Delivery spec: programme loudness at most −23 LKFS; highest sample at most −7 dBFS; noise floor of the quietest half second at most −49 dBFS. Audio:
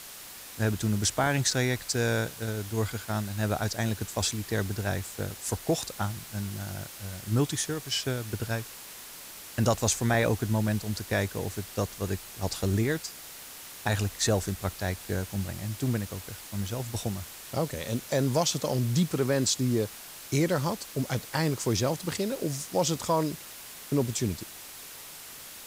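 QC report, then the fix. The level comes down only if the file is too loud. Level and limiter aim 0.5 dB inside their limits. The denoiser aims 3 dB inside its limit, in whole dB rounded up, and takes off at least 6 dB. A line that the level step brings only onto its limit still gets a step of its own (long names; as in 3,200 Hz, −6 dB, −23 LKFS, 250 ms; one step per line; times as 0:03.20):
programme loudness −29.5 LKFS: in spec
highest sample −11.5 dBFS: in spec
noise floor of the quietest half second −45 dBFS: out of spec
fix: broadband denoise 7 dB, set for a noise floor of −45 dBFS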